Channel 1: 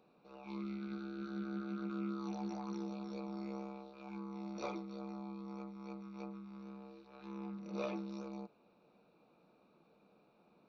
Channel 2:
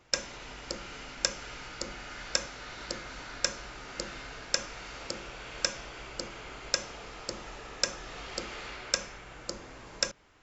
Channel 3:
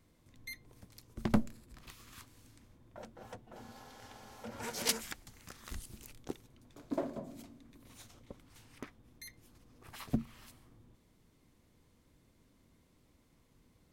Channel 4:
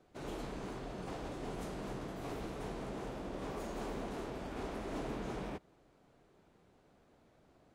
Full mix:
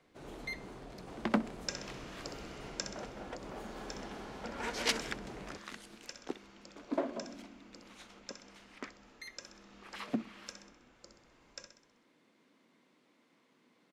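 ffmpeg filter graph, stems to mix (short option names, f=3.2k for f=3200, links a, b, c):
-filter_complex "[0:a]adelay=2250,volume=-16.5dB[a];[1:a]adelay=1550,volume=-9.5dB,afade=t=out:st=2.64:d=0.65:silence=0.316228,asplit=2[b][c];[c]volume=-8dB[d];[2:a]lowpass=2.1k,crystalizer=i=7:c=0,highpass=f=210:w=0.5412,highpass=f=210:w=1.3066,volume=1dB,asplit=2[e][f];[f]volume=-20.5dB[g];[3:a]volume=-5.5dB[h];[d][g]amix=inputs=2:normalize=0,aecho=0:1:64|128|192|256|320|384|448:1|0.5|0.25|0.125|0.0625|0.0312|0.0156[i];[a][b][e][h][i]amix=inputs=5:normalize=0"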